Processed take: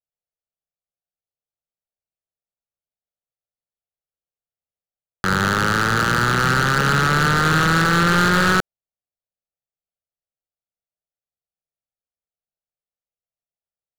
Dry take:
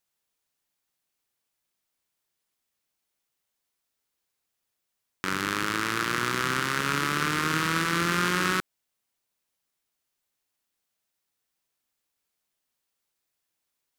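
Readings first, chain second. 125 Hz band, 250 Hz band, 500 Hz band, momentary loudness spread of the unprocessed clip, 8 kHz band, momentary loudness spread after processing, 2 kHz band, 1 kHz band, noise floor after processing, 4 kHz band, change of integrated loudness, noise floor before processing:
+14.0 dB, +9.5 dB, +9.5 dB, 4 LU, +5.5 dB, 5 LU, +9.0 dB, +9.5 dB, below −85 dBFS, +6.5 dB, +9.0 dB, −82 dBFS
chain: adaptive Wiener filter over 25 samples
low-pass filter 8,600 Hz
high-shelf EQ 4,800 Hz −11 dB
phaser with its sweep stopped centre 1,500 Hz, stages 8
leveller curve on the samples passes 5
level +4 dB

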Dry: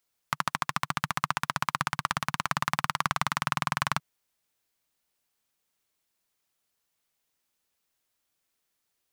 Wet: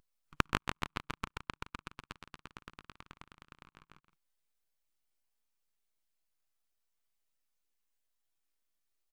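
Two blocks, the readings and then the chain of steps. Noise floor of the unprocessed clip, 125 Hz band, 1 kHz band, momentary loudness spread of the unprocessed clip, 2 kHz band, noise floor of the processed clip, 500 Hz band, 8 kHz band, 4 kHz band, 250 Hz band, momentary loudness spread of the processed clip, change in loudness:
−80 dBFS, −10.0 dB, −14.5 dB, 3 LU, −12.0 dB, below −85 dBFS, −6.5 dB, −16.5 dB, −11.5 dB, −6.5 dB, 23 LU, −10.0 dB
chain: volume swells 235 ms
gate with flip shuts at −22 dBFS, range −30 dB
on a send: loudspeakers that aren't time-aligned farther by 44 metres −11 dB, 57 metres −10 dB
on the sum: half-wave rectification
every bin expanded away from the loudest bin 1.5 to 1
level +13 dB

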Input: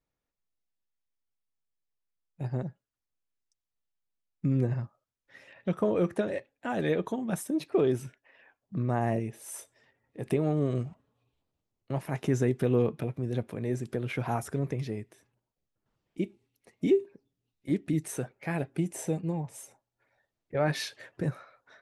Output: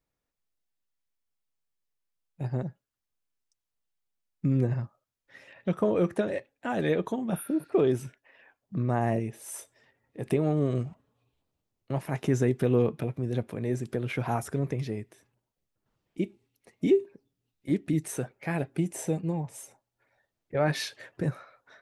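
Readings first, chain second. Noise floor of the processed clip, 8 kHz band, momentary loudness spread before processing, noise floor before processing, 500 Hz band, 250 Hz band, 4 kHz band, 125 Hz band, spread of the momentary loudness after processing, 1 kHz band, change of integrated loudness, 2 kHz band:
−85 dBFS, +1.0 dB, 14 LU, below −85 dBFS, +1.5 dB, +1.5 dB, +1.5 dB, +1.5 dB, 14 LU, +1.5 dB, +1.5 dB, +1.5 dB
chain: healed spectral selection 0:07.34–0:07.65, 1,300–9,100 Hz both
level +1.5 dB

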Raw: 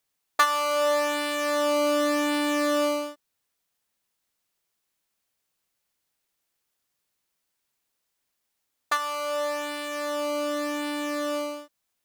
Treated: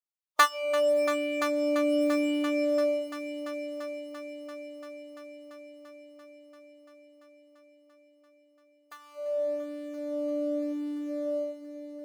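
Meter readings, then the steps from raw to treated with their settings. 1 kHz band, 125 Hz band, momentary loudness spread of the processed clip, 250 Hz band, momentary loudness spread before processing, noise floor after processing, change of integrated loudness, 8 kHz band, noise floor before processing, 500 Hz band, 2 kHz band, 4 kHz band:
−6.0 dB, can't be measured, 20 LU, 0.0 dB, 8 LU, −65 dBFS, −3.0 dB, −8.5 dB, −79 dBFS, −1.0 dB, −5.0 dB, −7.5 dB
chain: noise reduction from a noise print of the clip's start 23 dB
echo machine with several playback heads 341 ms, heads all three, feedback 64%, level −14.5 dB

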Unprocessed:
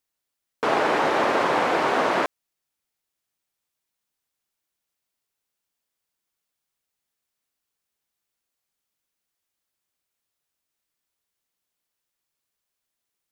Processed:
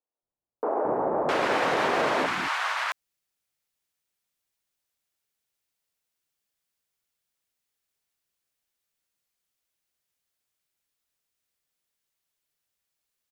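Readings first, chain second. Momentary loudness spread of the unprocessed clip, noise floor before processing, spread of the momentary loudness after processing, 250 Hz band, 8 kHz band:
5 LU, −83 dBFS, 7 LU, −3.5 dB, −1.0 dB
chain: brickwall limiter −13 dBFS, peak gain reduction 3.5 dB
three-band delay without the direct sound mids, lows, highs 220/660 ms, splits 280/970 Hz

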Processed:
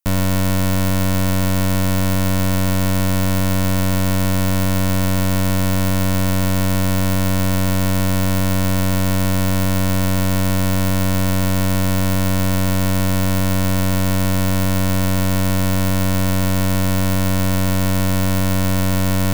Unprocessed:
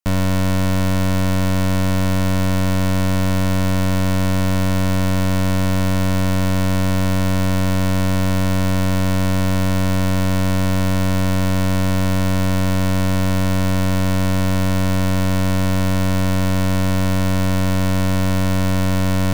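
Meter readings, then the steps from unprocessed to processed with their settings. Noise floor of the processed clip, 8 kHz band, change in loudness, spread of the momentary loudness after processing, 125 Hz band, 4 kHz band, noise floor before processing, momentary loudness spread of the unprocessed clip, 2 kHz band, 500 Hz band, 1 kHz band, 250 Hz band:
−16 dBFS, +4.5 dB, +0.5 dB, 0 LU, 0.0 dB, +1.5 dB, −16 dBFS, 0 LU, +0.5 dB, 0.0 dB, 0.0 dB, 0.0 dB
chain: high-shelf EQ 8,900 Hz +11 dB

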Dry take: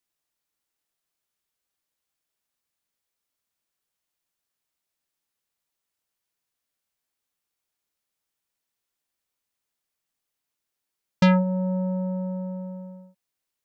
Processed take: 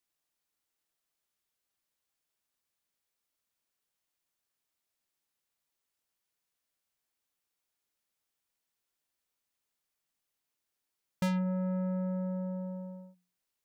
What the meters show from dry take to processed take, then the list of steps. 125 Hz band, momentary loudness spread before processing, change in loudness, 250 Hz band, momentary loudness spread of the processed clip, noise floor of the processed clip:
−8.5 dB, 18 LU, −9.5 dB, −8.5 dB, 11 LU, below −85 dBFS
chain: mains-hum notches 60/120/180 Hz
soft clipping −25 dBFS, distortion −6 dB
level −2 dB

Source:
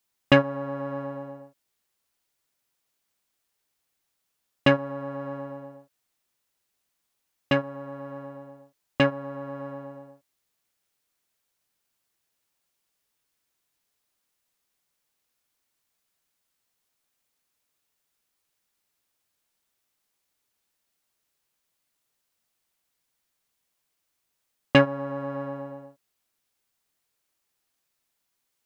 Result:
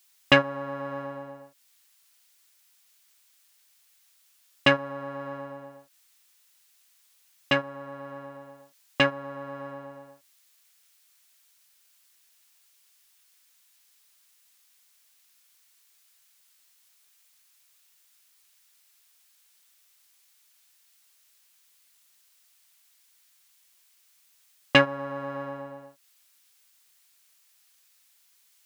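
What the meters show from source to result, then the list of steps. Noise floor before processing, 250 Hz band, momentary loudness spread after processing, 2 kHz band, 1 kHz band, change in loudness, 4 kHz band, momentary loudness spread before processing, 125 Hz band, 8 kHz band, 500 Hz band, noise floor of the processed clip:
−79 dBFS, −4.5 dB, 22 LU, +3.5 dB, +1.0 dB, −1.0 dB, +4.5 dB, 20 LU, −5.5 dB, can't be measured, −2.0 dB, −64 dBFS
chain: tilt shelving filter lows −5.5 dB, about 870 Hz
one half of a high-frequency compander encoder only

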